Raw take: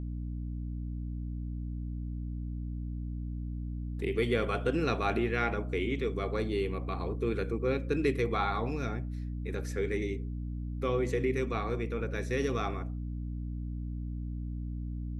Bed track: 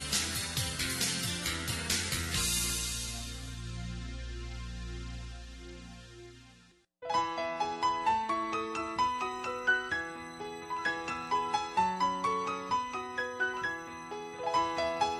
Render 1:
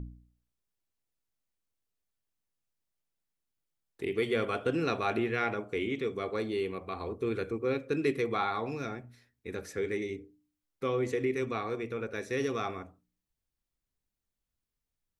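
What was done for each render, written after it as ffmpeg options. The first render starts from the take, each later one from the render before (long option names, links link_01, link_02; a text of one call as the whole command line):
ffmpeg -i in.wav -af "bandreject=frequency=60:width_type=h:width=4,bandreject=frequency=120:width_type=h:width=4,bandreject=frequency=180:width_type=h:width=4,bandreject=frequency=240:width_type=h:width=4,bandreject=frequency=300:width_type=h:width=4" out.wav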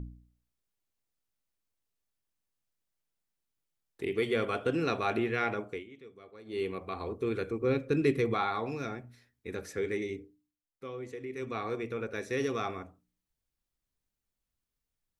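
ffmpeg -i in.wav -filter_complex "[0:a]asettb=1/sr,asplit=3[link_01][link_02][link_03];[link_01]atrim=end=7.614[link_04];[link_02]atrim=start=7.61:end=8.34,asetpts=PTS-STARTPTS,afade=type=in:duration=0.004:curve=qsin,afade=type=out:start_time=0.726:duration=0.004:curve=qsin,lowshelf=frequency=190:gain=10[link_05];[link_03]atrim=start=8.336[link_06];[link_04][link_05]acrossfade=duration=0.004:curve1=hsin:curve2=qsin[link_07];[link_07][link_06]acrossfade=duration=0.004:curve1=qsin:curve2=hsin,asplit=5[link_08][link_09][link_10][link_11][link_12];[link_08]atrim=end=5.84,asetpts=PTS-STARTPTS,afade=type=out:start_time=5.67:duration=0.17:silence=0.125893[link_13];[link_09]atrim=start=5.84:end=6.45,asetpts=PTS-STARTPTS,volume=-18dB[link_14];[link_10]atrim=start=6.45:end=10.59,asetpts=PTS-STARTPTS,afade=type=in:duration=0.17:silence=0.125893,afade=type=out:start_time=3.75:duration=0.39:silence=0.298538[link_15];[link_11]atrim=start=10.59:end=11.28,asetpts=PTS-STARTPTS,volume=-10.5dB[link_16];[link_12]atrim=start=11.28,asetpts=PTS-STARTPTS,afade=type=in:duration=0.39:silence=0.298538[link_17];[link_13][link_14][link_15][link_16][link_17]concat=n=5:v=0:a=1" out.wav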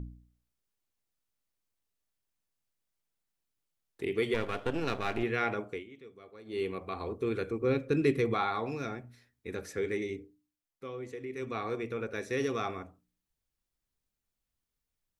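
ffmpeg -i in.wav -filter_complex "[0:a]asettb=1/sr,asplit=3[link_01][link_02][link_03];[link_01]atrim=end=4.344[link_04];[link_02]atrim=start=4.34:end=5.23,asetpts=PTS-STARTPTS,afade=type=in:duration=0.004:curve=qsin,afade=type=out:start_time=0.886:duration=0.004:curve=qsin,aeval=exprs='if(lt(val(0),0),0.251*val(0),val(0))':channel_layout=same[link_05];[link_03]atrim=start=5.226[link_06];[link_04][link_05]acrossfade=duration=0.004:curve1=hsin:curve2=qsin[link_07];[link_07][link_06]acrossfade=duration=0.004:curve1=qsin:curve2=hsin" out.wav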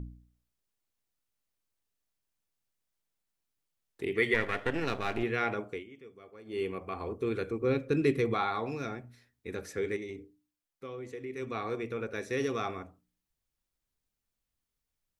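ffmpeg -i in.wav -filter_complex "[0:a]asettb=1/sr,asplit=3[link_01][link_02][link_03];[link_01]atrim=end=4.154[link_04];[link_02]atrim=start=4.15:end=4.86,asetpts=PTS-STARTPTS,afade=type=in:duration=0.004:curve=qsin,afade=type=out:start_time=0.706:duration=0.004:curve=qsin,equalizer=frequency=1900:width=3.7:gain=14.5[link_05];[link_03]atrim=start=4.856[link_06];[link_04][link_05]acrossfade=duration=0.004:curve1=hsin:curve2=qsin[link_07];[link_07][link_06]acrossfade=duration=0.004:curve1=qsin:curve2=hsin,asettb=1/sr,asplit=3[link_08][link_09][link_10];[link_08]atrim=end=5.834[link_11];[link_09]atrim=start=5.83:end=7.19,asetpts=PTS-STARTPTS,afade=type=in:duration=0.004:curve=qsin,afade=type=out:start_time=1.356:duration=0.004:curve=qsin,asuperstop=centerf=3900:order=4:qfactor=5.3[link_12];[link_10]atrim=start=7.186[link_13];[link_11][link_12]acrossfade=duration=0.004:curve1=hsin:curve2=qsin[link_14];[link_14][link_13]acrossfade=duration=0.004:curve1=qsin:curve2=hsin,asettb=1/sr,asplit=3[link_15][link_16][link_17];[link_15]atrim=end=9.964[link_18];[link_16]atrim=start=9.96:end=11.13,asetpts=PTS-STARTPTS,afade=type=in:duration=0.004:curve=qsin,afade=type=out:start_time=1.166:duration=0.004:curve=qsin,acompressor=threshold=-36dB:ratio=6:attack=3.2:release=140:knee=1:detection=peak[link_19];[link_17]atrim=start=11.126[link_20];[link_18][link_19]acrossfade=duration=0.004:curve1=hsin:curve2=qsin[link_21];[link_21][link_20]acrossfade=duration=0.004:curve1=qsin:curve2=hsin" out.wav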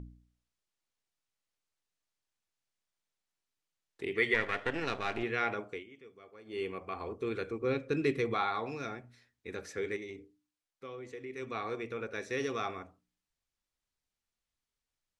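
ffmpeg -i in.wav -af "lowpass=7900,lowshelf=frequency=450:gain=-6" out.wav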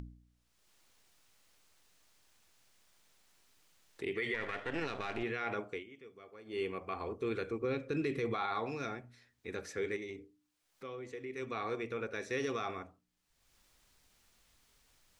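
ffmpeg -i in.wav -af "alimiter=level_in=2dB:limit=-24dB:level=0:latency=1:release=36,volume=-2dB,acompressor=mode=upward:threshold=-51dB:ratio=2.5" out.wav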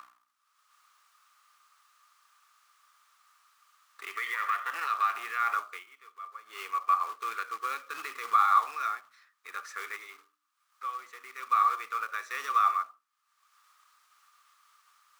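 ffmpeg -i in.wav -af "acrusher=bits=3:mode=log:mix=0:aa=0.000001,highpass=frequency=1200:width_type=q:width=13" out.wav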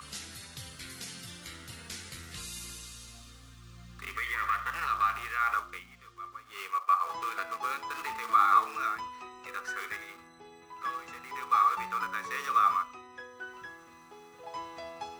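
ffmpeg -i in.wav -i bed.wav -filter_complex "[1:a]volume=-11dB[link_01];[0:a][link_01]amix=inputs=2:normalize=0" out.wav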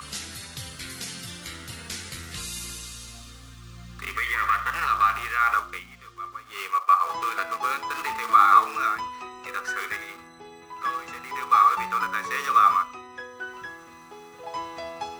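ffmpeg -i in.wav -af "volume=7dB" out.wav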